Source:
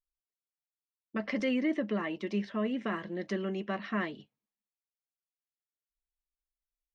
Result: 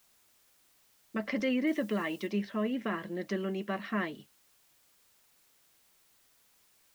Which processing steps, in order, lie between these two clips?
added noise white -67 dBFS; 1.67–2.27 s: treble shelf 3.7 kHz +9 dB

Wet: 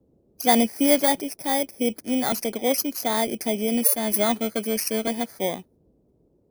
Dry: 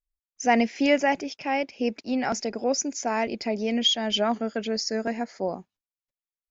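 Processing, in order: bit-reversed sample order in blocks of 16 samples; band noise 40–460 Hz -65 dBFS; trim +2.5 dB

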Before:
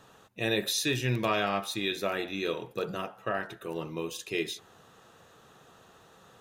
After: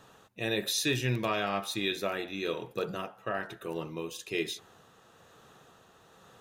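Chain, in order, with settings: tremolo 1.1 Hz, depth 28%

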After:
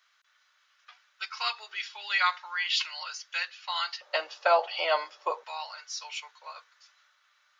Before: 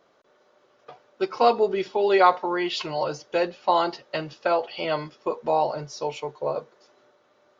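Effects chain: high-pass 1.5 kHz 24 dB/octave, from 4.01 s 650 Hz, from 5.44 s 1.4 kHz; trim +3 dB

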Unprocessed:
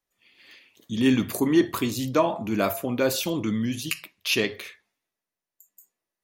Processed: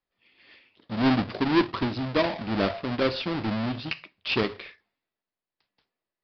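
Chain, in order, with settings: square wave that keeps the level; resampled via 11.025 kHz; trim -6 dB

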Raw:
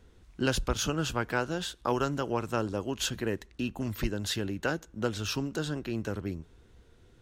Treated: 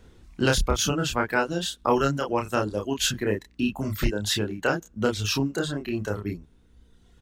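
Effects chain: reverb removal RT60 1.8 s; hum 60 Hz, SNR 33 dB; doubling 29 ms -3 dB; trim +5.5 dB

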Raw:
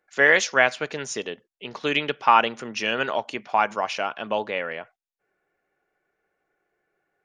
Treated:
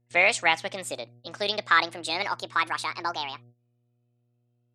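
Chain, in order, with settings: gliding tape speed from 122% -> 183%; mains buzz 120 Hz, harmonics 6, -50 dBFS -9 dB/octave; gate -47 dBFS, range -18 dB; trim -3.5 dB

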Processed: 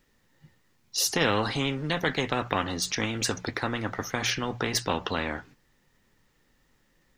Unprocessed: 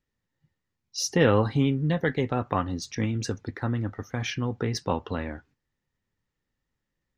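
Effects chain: peaking EQ 80 Hz -7 dB 1.5 oct; hum notches 60/120/180 Hz; spectrum-flattening compressor 2:1

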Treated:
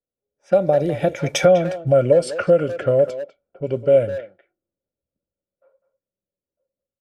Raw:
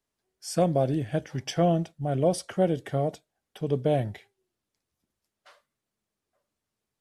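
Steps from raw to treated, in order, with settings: Doppler pass-by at 1.69 s, 31 m/s, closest 9.1 m; compression 16:1, threshold -35 dBFS, peak gain reduction 16.5 dB; level-controlled noise filter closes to 470 Hz, open at -39.5 dBFS; small resonant body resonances 550/1400/2300 Hz, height 16 dB, ringing for 40 ms; speakerphone echo 200 ms, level -12 dB; level rider gain up to 9.5 dB; trim +7 dB

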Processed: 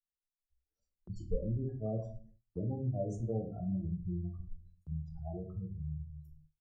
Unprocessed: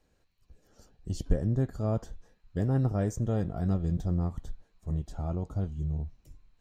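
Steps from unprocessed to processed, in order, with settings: expander on every frequency bin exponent 1.5; dynamic bell 620 Hz, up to +5 dB, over -45 dBFS, Q 0.93; spectral gate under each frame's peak -15 dB strong; simulated room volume 30 m³, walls mixed, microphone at 0.47 m; gate with hold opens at -45 dBFS; high-order bell 2.2 kHz -8.5 dB 1.3 oct; doubling 32 ms -13 dB; three bands compressed up and down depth 40%; trim -8.5 dB

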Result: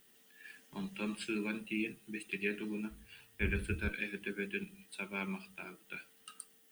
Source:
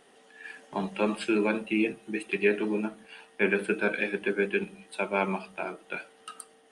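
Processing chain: 2.90–3.89 s: octave divider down 2 oct, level -2 dB; added noise violet -63 dBFS; amplifier tone stack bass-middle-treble 6-0-2; trim +10 dB

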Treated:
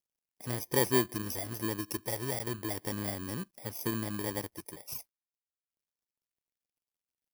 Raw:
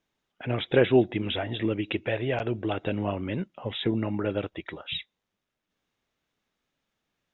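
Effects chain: bit-reversed sample order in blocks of 32 samples; word length cut 12-bit, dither none; trim -7 dB

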